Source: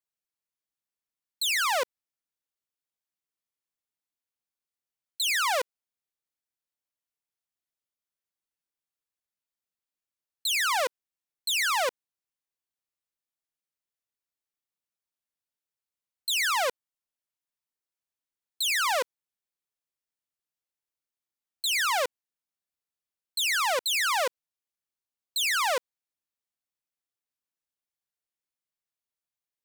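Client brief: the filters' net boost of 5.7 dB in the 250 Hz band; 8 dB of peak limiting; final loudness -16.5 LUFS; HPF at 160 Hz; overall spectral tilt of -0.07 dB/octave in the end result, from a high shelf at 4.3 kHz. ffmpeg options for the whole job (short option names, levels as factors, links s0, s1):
-af "highpass=160,equalizer=f=250:t=o:g=9,highshelf=f=4300:g=7.5,volume=5.01,alimiter=limit=0.473:level=0:latency=1"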